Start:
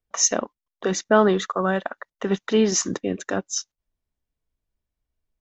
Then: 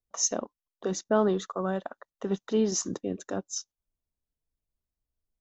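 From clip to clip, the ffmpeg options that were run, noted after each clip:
-af "equalizer=f=2100:t=o:w=1.3:g=-11,volume=0.501"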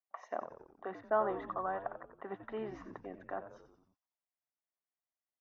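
-filter_complex "[0:a]highpass=460,equalizer=f=480:t=q:w=4:g=-7,equalizer=f=740:t=q:w=4:g=8,equalizer=f=1100:t=q:w=4:g=5,equalizer=f=2000:t=q:w=4:g=8,lowpass=f=2200:w=0.5412,lowpass=f=2200:w=1.3066,asplit=7[s0][s1][s2][s3][s4][s5][s6];[s1]adelay=90,afreqshift=-82,volume=0.282[s7];[s2]adelay=180,afreqshift=-164,volume=0.155[s8];[s3]adelay=270,afreqshift=-246,volume=0.0851[s9];[s4]adelay=360,afreqshift=-328,volume=0.0468[s10];[s5]adelay=450,afreqshift=-410,volume=0.0257[s11];[s6]adelay=540,afreqshift=-492,volume=0.0141[s12];[s0][s7][s8][s9][s10][s11][s12]amix=inputs=7:normalize=0,volume=0.473"

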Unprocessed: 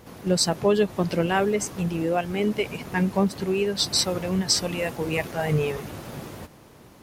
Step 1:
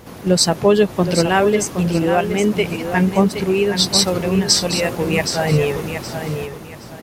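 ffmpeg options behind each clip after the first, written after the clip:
-af "aecho=1:1:770|1540|2310:0.376|0.0977|0.0254,volume=2.24"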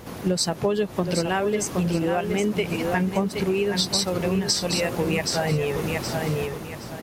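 -af "acompressor=threshold=0.1:ratio=6"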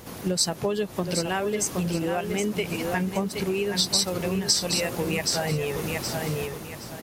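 -af "highshelf=f=4200:g=7.5,volume=0.668"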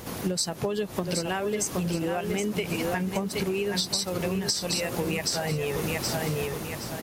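-af "acompressor=threshold=0.0398:ratio=6,volume=1.5"

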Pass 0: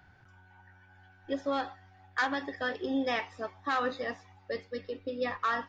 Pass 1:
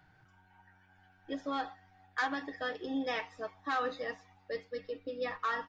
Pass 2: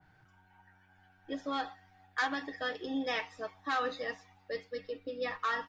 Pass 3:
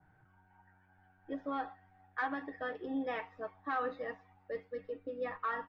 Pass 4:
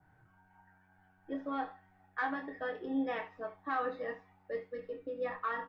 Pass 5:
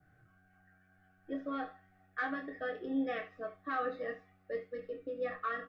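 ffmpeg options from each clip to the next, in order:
-af "aecho=1:1:6.4:0.52,volume=0.596"
-af "adynamicequalizer=threshold=0.00631:dfrequency=1900:dqfactor=0.7:tfrequency=1900:tqfactor=0.7:attack=5:release=100:ratio=0.375:range=2:mode=boostabove:tftype=highshelf"
-af "lowpass=1600,volume=0.841"
-af "aecho=1:1:26|74:0.447|0.178"
-af "asuperstop=centerf=920:order=8:qfactor=3"

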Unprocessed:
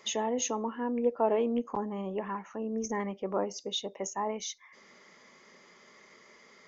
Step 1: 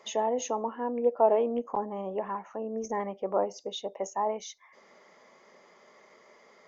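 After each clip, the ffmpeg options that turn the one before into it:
-af "equalizer=f=680:w=0.9:g=12,volume=0.531"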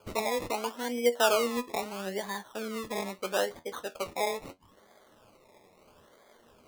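-af "acrusher=samples=23:mix=1:aa=0.000001:lfo=1:lforange=13.8:lforate=0.76,flanger=delay=9.4:depth=3.2:regen=60:speed=0.39:shape=sinusoidal,volume=1.33"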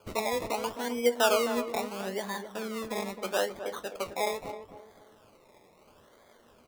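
-filter_complex "[0:a]asplit=2[s0][s1];[s1]adelay=262,lowpass=f=1100:p=1,volume=0.376,asplit=2[s2][s3];[s3]adelay=262,lowpass=f=1100:p=1,volume=0.37,asplit=2[s4][s5];[s5]adelay=262,lowpass=f=1100:p=1,volume=0.37,asplit=2[s6][s7];[s7]adelay=262,lowpass=f=1100:p=1,volume=0.37[s8];[s0][s2][s4][s6][s8]amix=inputs=5:normalize=0"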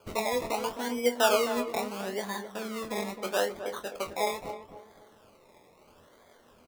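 -filter_complex "[0:a]asplit=2[s0][s1];[s1]adelay=24,volume=0.398[s2];[s0][s2]amix=inputs=2:normalize=0"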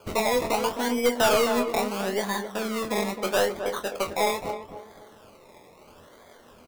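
-af "aeval=exprs='(tanh(14.1*val(0)+0.25)-tanh(0.25))/14.1':c=same,volume=2.37"

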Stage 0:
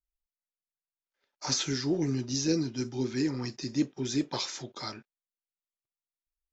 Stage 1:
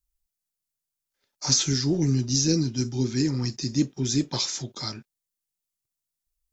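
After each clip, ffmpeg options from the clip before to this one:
-af "bass=f=250:g=11,treble=f=4000:g=11"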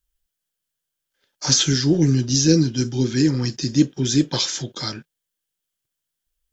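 -af "equalizer=f=160:t=o:w=0.33:g=4,equalizer=f=315:t=o:w=0.33:g=4,equalizer=f=500:t=o:w=0.33:g=6,equalizer=f=1600:t=o:w=0.33:g=8,equalizer=f=3150:t=o:w=0.33:g=9,volume=1.5"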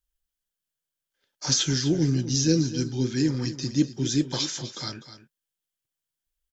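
-af "aecho=1:1:251:0.224,volume=0.501"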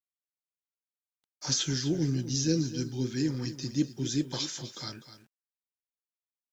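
-af "acrusher=bits=9:mix=0:aa=0.000001,volume=0.531"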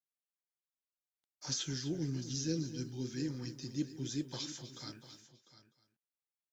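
-af "aecho=1:1:700:0.178,volume=0.376"

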